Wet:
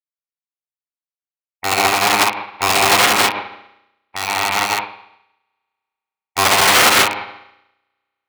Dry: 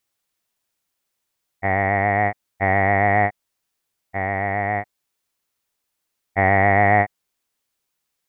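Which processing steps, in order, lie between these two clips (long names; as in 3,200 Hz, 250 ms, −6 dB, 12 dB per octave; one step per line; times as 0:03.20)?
bucket-brigade delay 65 ms, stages 1,024, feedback 67%, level −8 dB
wrap-around overflow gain 14.5 dB
high-pass filter 290 Hz 6 dB per octave
low-shelf EQ 480 Hz −4 dB
formants moved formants +4 semitones
high-shelf EQ 3,000 Hz −7.5 dB
spring reverb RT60 2.3 s, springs 33 ms, chirp 45 ms, DRR 4.5 dB
boost into a limiter +13.5 dB
expander for the loud parts 2.5 to 1, over −34 dBFS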